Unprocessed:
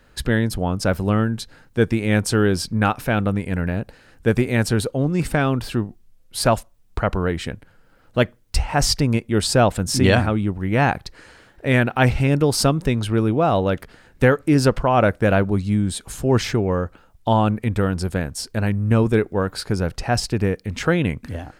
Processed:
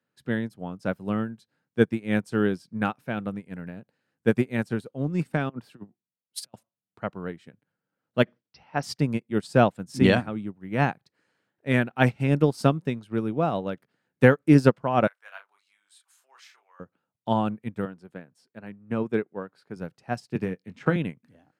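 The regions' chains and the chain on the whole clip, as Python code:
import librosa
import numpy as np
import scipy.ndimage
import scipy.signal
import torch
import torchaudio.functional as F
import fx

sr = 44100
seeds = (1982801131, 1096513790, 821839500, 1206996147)

y = fx.chain(x, sr, fx.low_shelf(hz=200.0, db=-7.0),
    fx.over_compress(threshold_db=-26.0, ratio=-0.5),
    fx.band_widen(depth_pct=70), at=(5.49, 6.54))
y = fx.chain(y, sr, fx.brickwall_lowpass(high_hz=6100.0),
    fx.peak_eq(hz=110.0, db=-5.5, octaves=1.2),
    fx.sustainer(db_per_s=130.0), at=(8.23, 8.83))
y = fx.chain(y, sr, fx.highpass(hz=970.0, slope=24),
    fx.doubler(ms=30.0, db=-5), at=(15.07, 16.8))
y = fx.chain(y, sr, fx.highpass(hz=96.0, slope=12),
    fx.bass_treble(bass_db=-4, treble_db=-9), at=(17.85, 19.76))
y = fx.chain(y, sr, fx.high_shelf(hz=8300.0, db=-8.5),
    fx.doubler(ms=22.0, db=-10.0),
    fx.band_squash(depth_pct=70), at=(20.35, 20.96))
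y = scipy.signal.sosfilt(scipy.signal.butter(4, 140.0, 'highpass', fs=sr, output='sos'), y)
y = fx.bass_treble(y, sr, bass_db=5, treble_db=-2)
y = fx.upward_expand(y, sr, threshold_db=-28.0, expansion=2.5)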